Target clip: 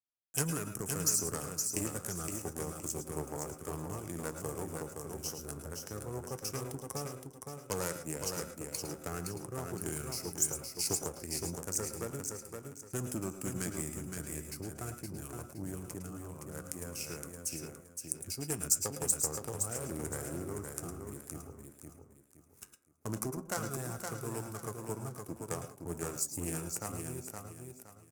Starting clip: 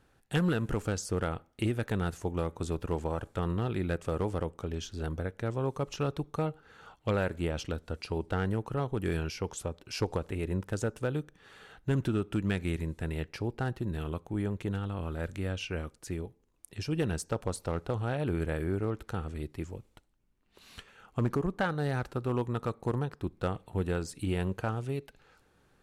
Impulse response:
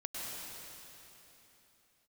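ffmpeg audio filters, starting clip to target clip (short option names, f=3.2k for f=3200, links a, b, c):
-filter_complex "[0:a]aeval=exprs='0.106*(cos(1*acos(clip(val(0)/0.106,-1,1)))-cos(1*PI/2))+0.0335*(cos(2*acos(clip(val(0)/0.106,-1,1)))-cos(2*PI/2))+0.0168*(cos(3*acos(clip(val(0)/0.106,-1,1)))-cos(3*PI/2))+0.000596*(cos(5*acos(clip(val(0)/0.106,-1,1)))-cos(5*PI/2))':c=same,highpass=86,acrossover=split=130|2100[a][b][c];[c]aeval=exprs='sgn(val(0))*max(abs(val(0))-0.00126,0)':c=same[d];[a][b][d]amix=inputs=3:normalize=0,flanger=delay=5.8:depth=5.9:regen=-75:speed=0.13:shape=sinusoidal,asplit=2[e][f];[f]asoftclip=type=hard:threshold=-33dB,volume=-5dB[g];[e][g]amix=inputs=2:normalize=0,aexciter=amount=10.5:drive=8.5:freq=6k,agate=range=-33dB:threshold=-48dB:ratio=3:detection=peak,aecho=1:1:475|950|1425|1900:0.562|0.169|0.0506|0.0152[h];[1:a]atrim=start_sample=2205,afade=t=out:st=0.15:d=0.01,atrim=end_sample=7056,asetrate=43659,aresample=44100[i];[h][i]afir=irnorm=-1:irlink=0,asetrate=40517,aresample=44100"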